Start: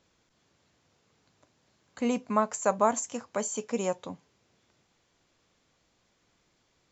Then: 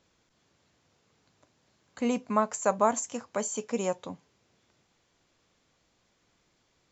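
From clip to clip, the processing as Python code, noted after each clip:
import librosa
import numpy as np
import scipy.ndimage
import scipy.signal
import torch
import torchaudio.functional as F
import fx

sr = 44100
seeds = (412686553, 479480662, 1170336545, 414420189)

y = x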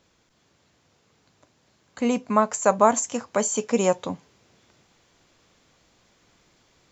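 y = fx.rider(x, sr, range_db=10, speed_s=2.0)
y = y * librosa.db_to_amplitude(7.0)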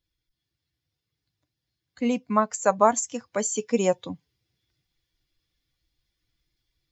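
y = fx.bin_expand(x, sr, power=1.5)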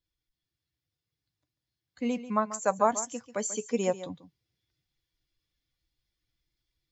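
y = x + 10.0 ** (-14.0 / 20.0) * np.pad(x, (int(140 * sr / 1000.0), 0))[:len(x)]
y = y * librosa.db_to_amplitude(-5.5)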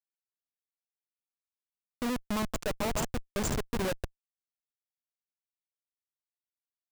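y = fx.schmitt(x, sr, flips_db=-30.0)
y = y * librosa.db_to_amplitude(5.0)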